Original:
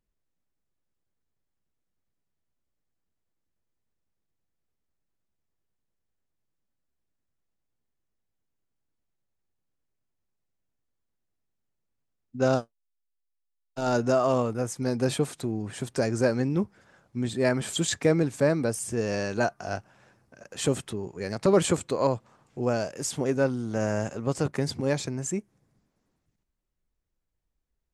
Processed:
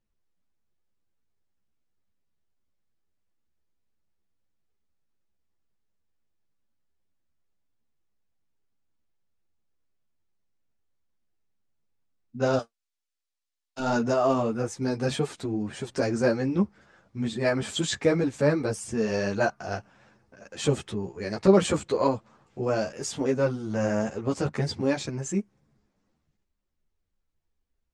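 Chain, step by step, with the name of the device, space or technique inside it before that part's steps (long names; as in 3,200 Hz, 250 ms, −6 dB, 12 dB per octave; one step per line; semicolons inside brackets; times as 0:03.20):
string-machine ensemble chorus (string-ensemble chorus; low-pass filter 6,700 Hz 12 dB per octave)
0:12.59–0:13.80: spectral tilt +2.5 dB per octave
level +4 dB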